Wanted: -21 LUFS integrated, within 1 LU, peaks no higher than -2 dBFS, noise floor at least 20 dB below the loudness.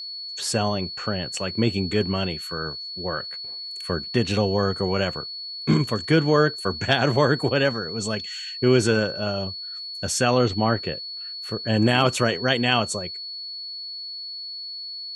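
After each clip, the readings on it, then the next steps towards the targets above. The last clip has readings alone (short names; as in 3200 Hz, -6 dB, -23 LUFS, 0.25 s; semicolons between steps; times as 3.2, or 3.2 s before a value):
steady tone 4400 Hz; tone level -32 dBFS; loudness -24.0 LUFS; peak -5.5 dBFS; loudness target -21.0 LUFS
-> notch 4400 Hz, Q 30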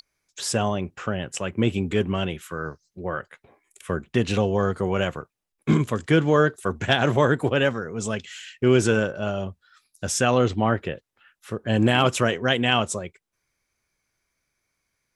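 steady tone none; loudness -23.5 LUFS; peak -5.5 dBFS; loudness target -21.0 LUFS
-> gain +2.5 dB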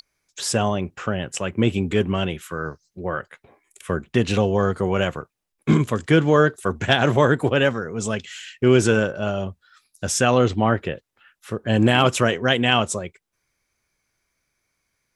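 loudness -21.0 LUFS; peak -3.0 dBFS; noise floor -77 dBFS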